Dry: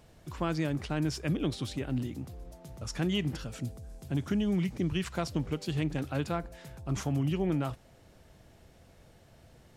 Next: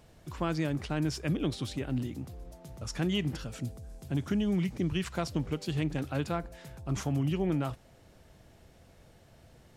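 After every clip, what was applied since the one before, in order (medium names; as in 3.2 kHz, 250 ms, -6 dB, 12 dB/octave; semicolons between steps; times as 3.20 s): no audible change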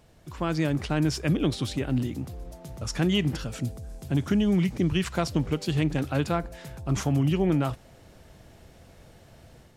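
level rider gain up to 6 dB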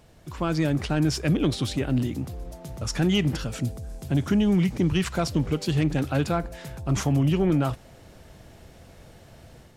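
saturation -15.5 dBFS, distortion -20 dB; trim +3 dB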